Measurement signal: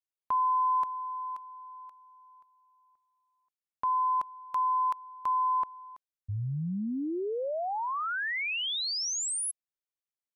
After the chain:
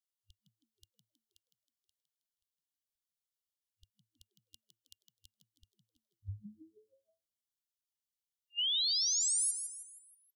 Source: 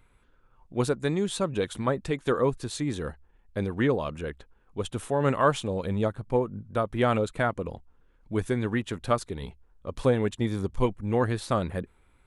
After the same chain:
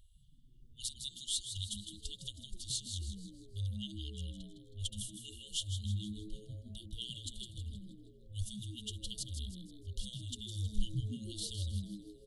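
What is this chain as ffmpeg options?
-filter_complex "[0:a]afftfilt=real='re*(1-between(b*sr/4096,100,2800))':imag='im*(1-between(b*sr/4096,100,2800))':win_size=4096:overlap=0.75,asplit=6[a][b][c][d][e][f];[b]adelay=159,afreqshift=110,volume=-8.5dB[g];[c]adelay=318,afreqshift=220,volume=-15.8dB[h];[d]adelay=477,afreqshift=330,volume=-23.2dB[i];[e]adelay=636,afreqshift=440,volume=-30.5dB[j];[f]adelay=795,afreqshift=550,volume=-37.8dB[k];[a][g][h][i][j][k]amix=inputs=6:normalize=0"

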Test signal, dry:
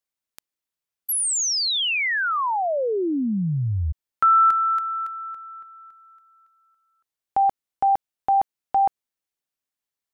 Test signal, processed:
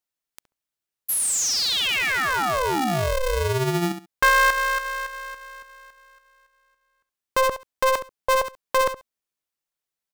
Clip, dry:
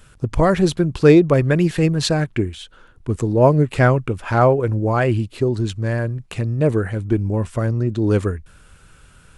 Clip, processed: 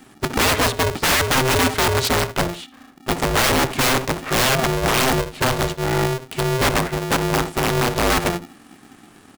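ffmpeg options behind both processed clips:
-filter_complex "[0:a]aeval=exprs='(mod(3.98*val(0)+1,2)-1)/3.98':c=same,asplit=2[a][b];[b]adelay=68,lowpass=f=1.1k:p=1,volume=-10dB,asplit=2[c][d];[d]adelay=68,lowpass=f=1.1k:p=1,volume=0.17[e];[a][c][e]amix=inputs=3:normalize=0,aeval=exprs='val(0)*sgn(sin(2*PI*260*n/s))':c=same"

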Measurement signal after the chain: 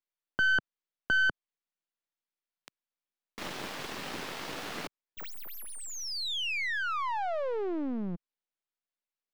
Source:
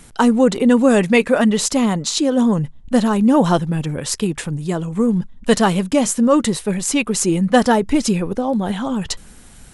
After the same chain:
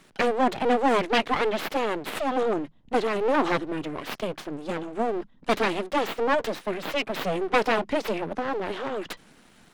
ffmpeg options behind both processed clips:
-filter_complex "[0:a]aeval=exprs='abs(val(0))':c=same,acrossover=split=150 5000:gain=0.158 1 0.2[a][b][c];[a][b][c]amix=inputs=3:normalize=0,volume=-4dB"

